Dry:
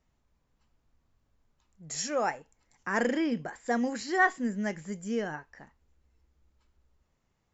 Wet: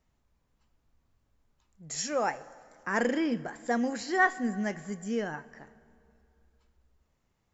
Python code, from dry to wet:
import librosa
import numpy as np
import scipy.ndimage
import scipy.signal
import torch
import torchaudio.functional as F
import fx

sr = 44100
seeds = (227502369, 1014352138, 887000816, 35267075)

y = fx.rev_plate(x, sr, seeds[0], rt60_s=2.6, hf_ratio=0.7, predelay_ms=0, drr_db=17.5)